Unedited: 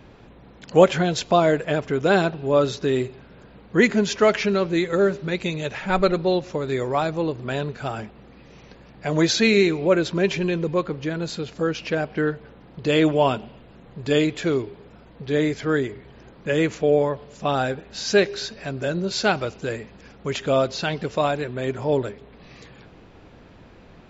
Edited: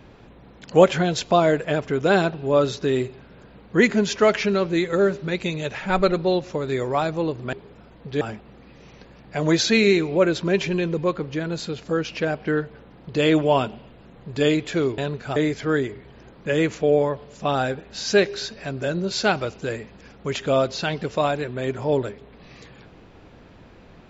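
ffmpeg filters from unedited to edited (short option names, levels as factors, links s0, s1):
-filter_complex "[0:a]asplit=5[s0][s1][s2][s3][s4];[s0]atrim=end=7.532[s5];[s1]atrim=start=14.678:end=15.362[s6];[s2]atrim=start=7.908:end=14.682[s7];[s3]atrim=start=7.528:end=7.912[s8];[s4]atrim=start=15.358[s9];[s5][s6]acrossfade=d=0.004:c1=hsin:c2=hsin[s10];[s10][s7]acrossfade=d=0.004:c1=hsin:c2=hsin[s11];[s11][s8]acrossfade=d=0.004:c1=hsin:c2=hsin[s12];[s12][s9]acrossfade=d=0.004:c1=hsin:c2=hsin"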